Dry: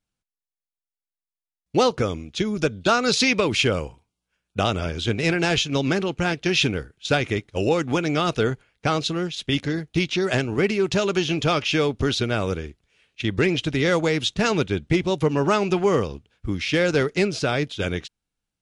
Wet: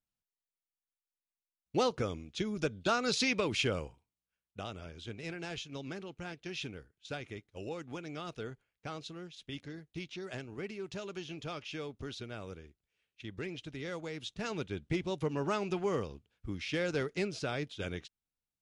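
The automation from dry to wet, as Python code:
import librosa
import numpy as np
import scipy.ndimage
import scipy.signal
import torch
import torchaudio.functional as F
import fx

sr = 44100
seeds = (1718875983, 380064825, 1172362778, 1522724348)

y = fx.gain(x, sr, db=fx.line((3.82, -11.0), (4.62, -20.0), (14.06, -20.0), (14.92, -13.0)))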